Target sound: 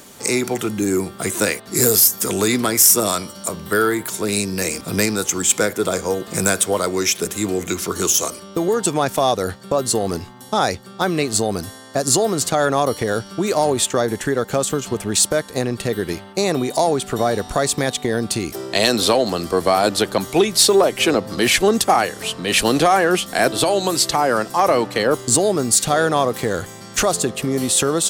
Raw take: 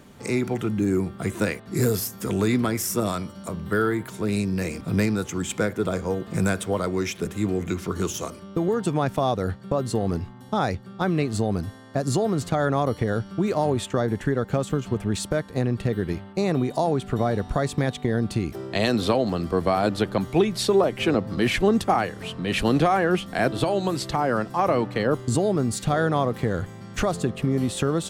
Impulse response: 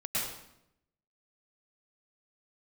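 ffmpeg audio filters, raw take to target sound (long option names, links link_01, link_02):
-af "bass=frequency=250:gain=-10,treble=frequency=4000:gain=12,acontrast=79"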